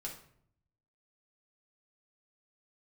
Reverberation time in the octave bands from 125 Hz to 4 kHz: 1.1 s, 0.85 s, 0.70 s, 0.60 s, 0.55 s, 0.45 s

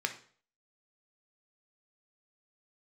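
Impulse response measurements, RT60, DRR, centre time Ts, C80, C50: 0.45 s, 5.0 dB, 9 ms, 16.5 dB, 11.5 dB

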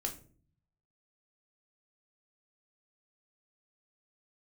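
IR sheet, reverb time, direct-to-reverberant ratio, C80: no single decay rate, 1.5 dB, 17.0 dB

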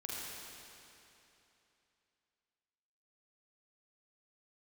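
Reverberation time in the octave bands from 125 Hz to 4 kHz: 3.0 s, 3.0 s, 3.0 s, 3.0 s, 2.9 s, 2.8 s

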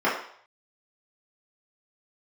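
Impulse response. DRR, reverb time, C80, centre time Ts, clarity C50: -9.5 dB, 0.60 s, 8.5 dB, 39 ms, 5.0 dB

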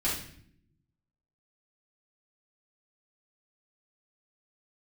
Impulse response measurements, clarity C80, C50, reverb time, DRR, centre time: 8.5 dB, 3.5 dB, 0.65 s, -8.5 dB, 40 ms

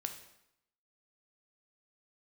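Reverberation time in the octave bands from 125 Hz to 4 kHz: 0.80 s, 0.80 s, 0.80 s, 0.80 s, 0.75 s, 0.70 s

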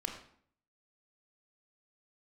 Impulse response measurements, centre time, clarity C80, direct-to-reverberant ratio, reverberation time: 24 ms, 9.5 dB, 3.0 dB, 0.60 s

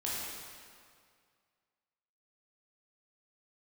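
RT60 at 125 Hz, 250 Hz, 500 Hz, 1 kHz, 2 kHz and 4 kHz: 2.1 s, 2.0 s, 2.1 s, 2.1 s, 1.9 s, 1.7 s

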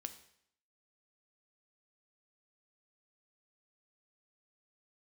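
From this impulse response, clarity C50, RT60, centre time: 12.5 dB, 0.70 s, 7 ms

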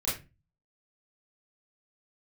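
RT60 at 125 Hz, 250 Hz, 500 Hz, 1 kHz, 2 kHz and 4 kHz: 0.60 s, 0.45 s, 0.30 s, 0.25 s, 0.25 s, 0.20 s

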